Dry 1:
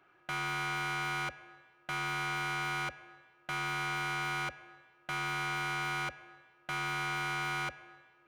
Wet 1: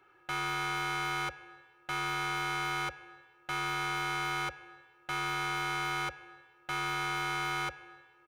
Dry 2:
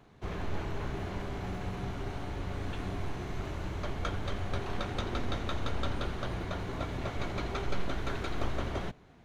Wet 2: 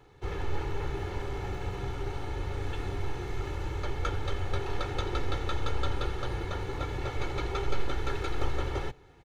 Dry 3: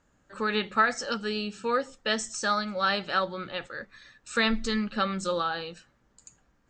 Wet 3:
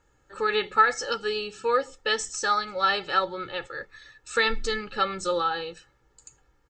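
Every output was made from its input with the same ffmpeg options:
ffmpeg -i in.wav -af "aecho=1:1:2.3:0.74" out.wav

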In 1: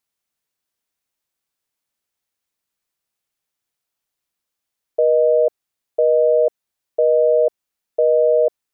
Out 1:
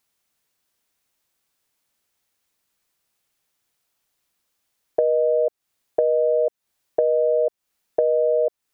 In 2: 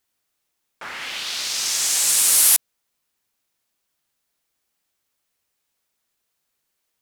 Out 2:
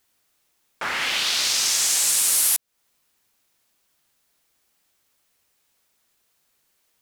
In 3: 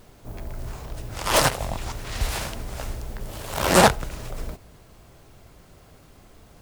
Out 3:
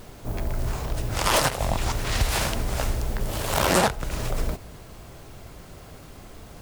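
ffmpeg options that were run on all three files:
ffmpeg -i in.wav -af "acompressor=threshold=-26dB:ratio=4,volume=7dB" out.wav

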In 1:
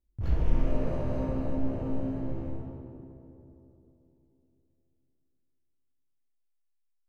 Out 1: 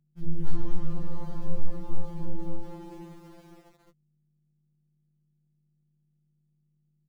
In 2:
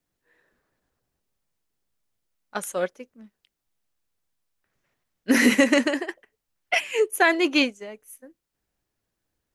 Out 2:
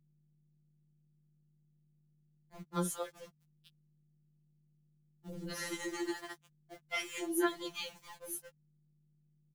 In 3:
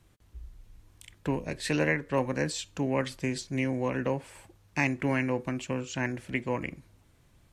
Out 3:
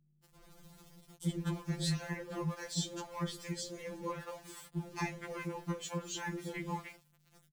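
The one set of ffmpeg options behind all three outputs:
ffmpeg -i in.wav -filter_complex "[0:a]superequalizer=7b=0.501:8b=0.501:11b=0.447:12b=0.316,acrossover=split=150[link_01][link_02];[link_02]acompressor=threshold=-40dB:ratio=4[link_03];[link_01][link_03]amix=inputs=2:normalize=0,acrossover=split=530[link_04][link_05];[link_05]adelay=220[link_06];[link_04][link_06]amix=inputs=2:normalize=0,asplit=2[link_07][link_08];[link_08]alimiter=limit=-24dB:level=0:latency=1:release=271,volume=-3dB[link_09];[link_07][link_09]amix=inputs=2:normalize=0,flanger=delay=7.3:depth=6.4:regen=-72:speed=0.92:shape=sinusoidal,aeval=exprs='val(0)*gte(abs(val(0)),0.00224)':channel_layout=same,aeval=exprs='val(0)+0.002*(sin(2*PI*50*n/s)+sin(2*PI*2*50*n/s)/2+sin(2*PI*3*50*n/s)/3+sin(2*PI*4*50*n/s)/4+sin(2*PI*5*50*n/s)/5)':channel_layout=same,acompressor=mode=upward:threshold=-49dB:ratio=2.5,afftfilt=real='re*2.83*eq(mod(b,8),0)':imag='im*2.83*eq(mod(b,8),0)':win_size=2048:overlap=0.75,volume=6dB" out.wav

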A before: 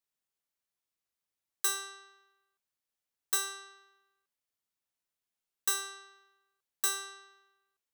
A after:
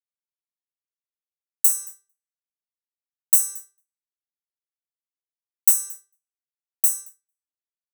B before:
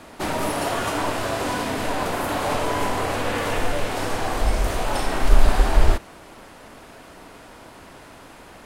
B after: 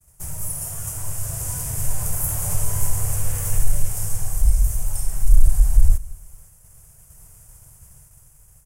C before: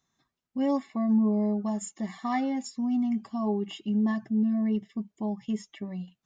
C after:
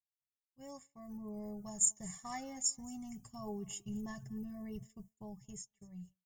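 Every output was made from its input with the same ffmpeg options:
ffmpeg -i in.wav -filter_complex "[0:a]dynaudnorm=framelen=250:gausssize=11:maxgain=9dB,firequalizer=gain_entry='entry(150,0);entry(220,-28);entry(440,-18);entry(2000,-16)':delay=0.05:min_phase=1,asplit=2[link_01][link_02];[link_02]aecho=0:1:225|450:0.0708|0.0234[link_03];[link_01][link_03]amix=inputs=2:normalize=0,acontrast=35,agate=range=-33dB:threshold=-43dB:ratio=3:detection=peak,aexciter=amount=13.2:drive=8.9:freq=6200,lowshelf=frequency=160:gain=10,volume=-10.5dB" out.wav

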